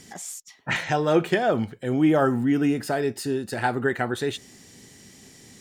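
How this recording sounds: noise floor -51 dBFS; spectral tilt -5.0 dB/octave

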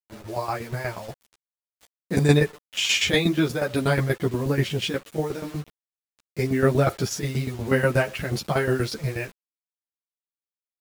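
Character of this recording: tremolo saw down 8.3 Hz, depth 80%; a quantiser's noise floor 8-bit, dither none; a shimmering, thickened sound

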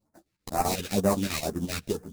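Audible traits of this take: aliases and images of a low sample rate 3.2 kHz, jitter 20%; phasing stages 2, 2.1 Hz, lowest notch 630–3100 Hz; chopped level 7.7 Hz, depth 60%, duty 70%; a shimmering, thickened sound

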